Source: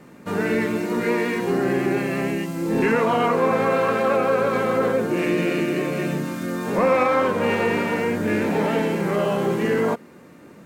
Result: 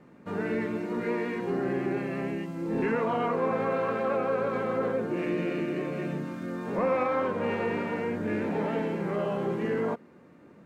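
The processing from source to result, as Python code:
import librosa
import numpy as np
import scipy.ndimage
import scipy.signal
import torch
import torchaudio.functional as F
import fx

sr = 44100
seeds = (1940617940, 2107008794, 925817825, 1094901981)

y = fx.lowpass(x, sr, hz=2000.0, slope=6)
y = y * librosa.db_to_amplitude(-7.5)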